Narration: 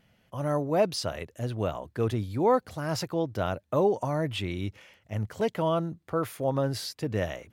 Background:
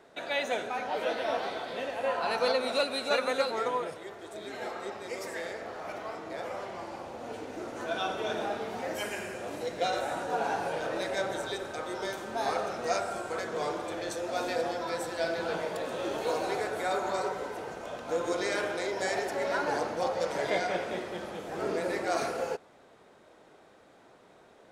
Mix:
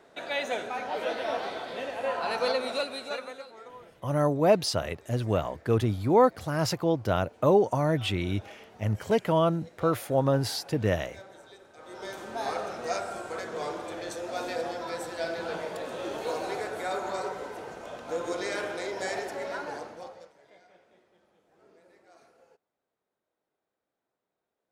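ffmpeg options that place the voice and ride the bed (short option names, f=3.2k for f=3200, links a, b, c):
-filter_complex "[0:a]adelay=3700,volume=3dB[a];[1:a]volume=15dB,afade=t=out:st=2.56:d=0.87:silence=0.149624,afade=t=in:st=11.75:d=0.48:silence=0.177828,afade=t=out:st=19.12:d=1.21:silence=0.0446684[b];[a][b]amix=inputs=2:normalize=0"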